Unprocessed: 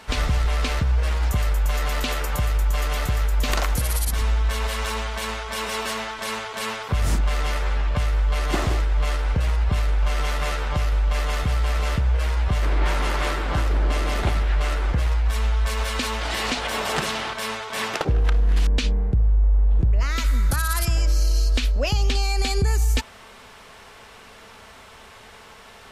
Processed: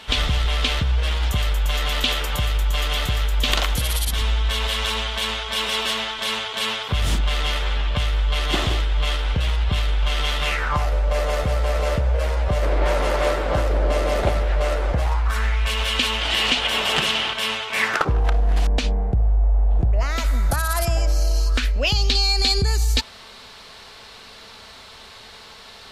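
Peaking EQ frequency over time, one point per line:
peaking EQ +12.5 dB 0.67 oct
10.44 s 3.3 kHz
10.93 s 560 Hz
14.90 s 560 Hz
15.71 s 3 kHz
17.65 s 3 kHz
18.29 s 710 Hz
21.34 s 710 Hz
21.96 s 4.2 kHz

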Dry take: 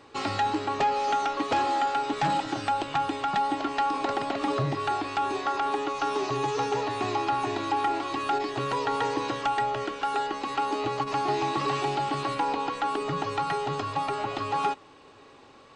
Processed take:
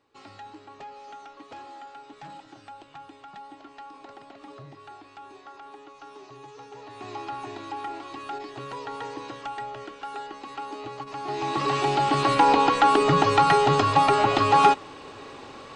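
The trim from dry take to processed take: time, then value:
6.69 s -17.5 dB
7.17 s -8 dB
11.17 s -8 dB
11.53 s +1 dB
12.51 s +10 dB

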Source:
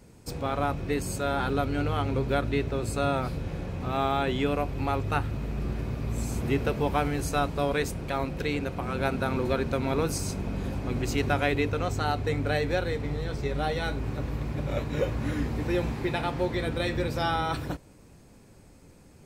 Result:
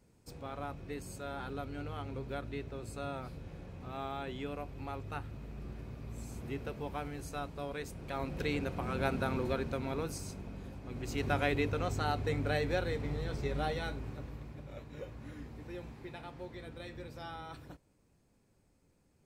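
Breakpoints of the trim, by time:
7.83 s -13.5 dB
8.41 s -5 dB
9.18 s -5 dB
10.81 s -15 dB
11.35 s -5.5 dB
13.63 s -5.5 dB
14.69 s -17.5 dB

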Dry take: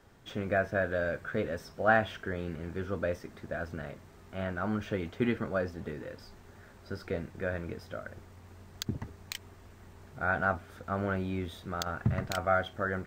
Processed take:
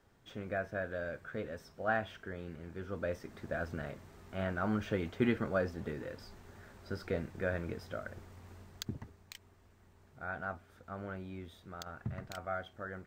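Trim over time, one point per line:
2.73 s -8 dB
3.44 s -1 dB
8.54 s -1 dB
9.26 s -11 dB

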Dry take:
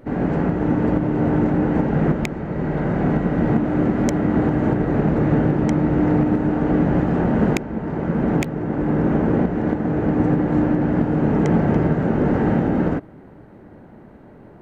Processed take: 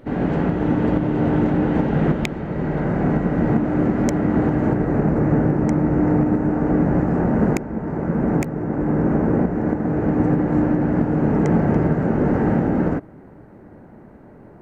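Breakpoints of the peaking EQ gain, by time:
peaking EQ 3.4 kHz 0.69 oct
2.31 s +5.5 dB
2.98 s -4 dB
4.56 s -4 dB
5.13 s -14.5 dB
9.68 s -14.5 dB
10.09 s -8 dB

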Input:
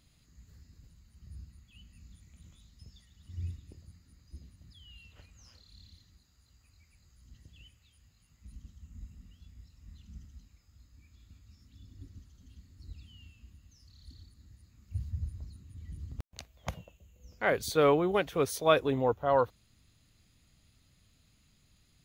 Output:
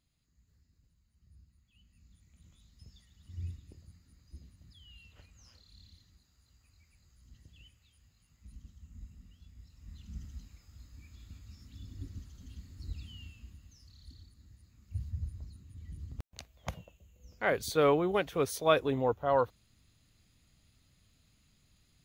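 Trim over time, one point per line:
1.45 s -13 dB
2.86 s -2 dB
9.52 s -2 dB
10.29 s +6 dB
13.10 s +6 dB
14.21 s -1.5 dB

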